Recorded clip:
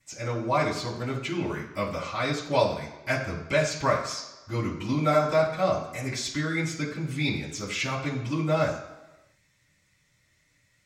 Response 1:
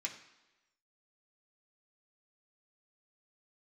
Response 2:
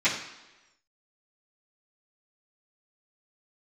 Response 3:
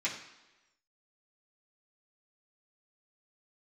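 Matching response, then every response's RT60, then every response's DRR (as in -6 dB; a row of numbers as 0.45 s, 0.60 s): 2; 1.1 s, 1.1 s, 1.1 s; -1.0 dB, -15.5 dB, -8.5 dB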